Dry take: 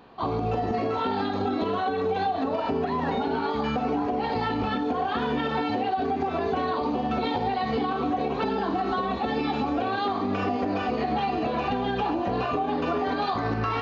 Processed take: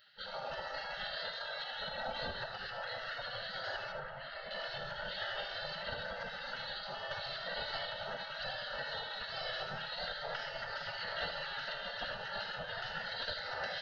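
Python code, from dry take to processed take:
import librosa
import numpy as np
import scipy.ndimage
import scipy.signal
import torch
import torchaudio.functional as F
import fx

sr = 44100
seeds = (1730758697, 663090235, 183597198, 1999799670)

y = fx.octave_divider(x, sr, octaves=2, level_db=2.0)
y = fx.spec_gate(y, sr, threshold_db=-20, keep='weak')
y = fx.low_shelf(y, sr, hz=460.0, db=-10.0, at=(1.31, 1.88))
y = fx.notch(y, sr, hz=3500.0, q=12.0)
y = fx.air_absorb(y, sr, metres=340.0, at=(3.92, 4.51))
y = fx.fixed_phaser(y, sr, hz=1600.0, stages=8)
y = y + 10.0 ** (-10.0 / 20.0) * np.pad(y, (int(78 * sr / 1000.0), 0))[:len(y)]
y = F.gain(torch.from_numpy(y), 3.5).numpy()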